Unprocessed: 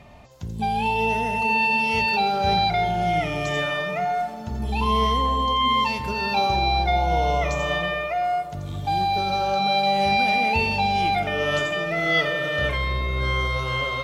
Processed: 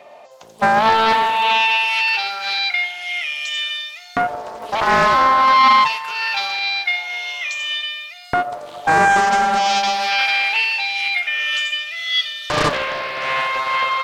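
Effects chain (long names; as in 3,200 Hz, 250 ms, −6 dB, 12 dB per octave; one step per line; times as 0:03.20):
auto-filter high-pass saw up 0.24 Hz 510–4,100 Hz
highs frequency-modulated by the lows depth 0.94 ms
level +3.5 dB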